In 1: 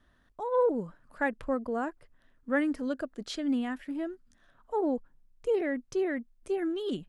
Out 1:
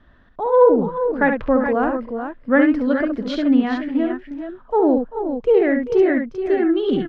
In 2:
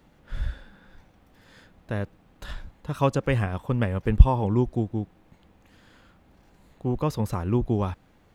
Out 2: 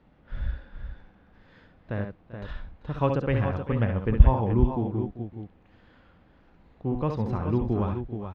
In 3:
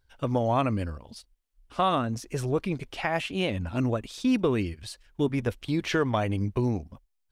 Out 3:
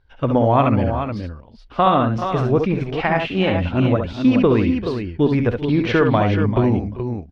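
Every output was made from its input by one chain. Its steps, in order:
air absorption 260 m; tapped delay 53/64/68/391/426 ms -15/-18/-6.5/-16.5/-8 dB; normalise peaks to -3 dBFS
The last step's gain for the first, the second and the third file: +12.5, -2.0, +9.0 dB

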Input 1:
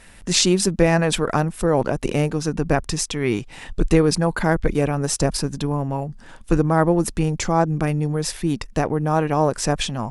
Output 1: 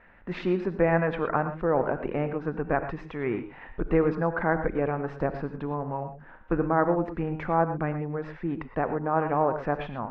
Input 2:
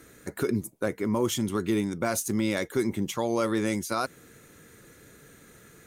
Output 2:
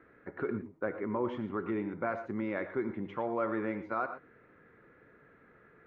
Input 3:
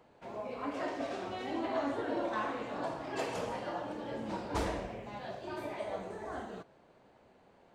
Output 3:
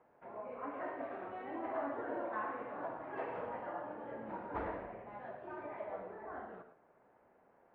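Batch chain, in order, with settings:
LPF 1900 Hz 24 dB/oct; low shelf 290 Hz -10 dB; non-linear reverb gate 0.14 s rising, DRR 9 dB; gain -3 dB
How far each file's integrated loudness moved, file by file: -7.0, -7.0, -5.0 LU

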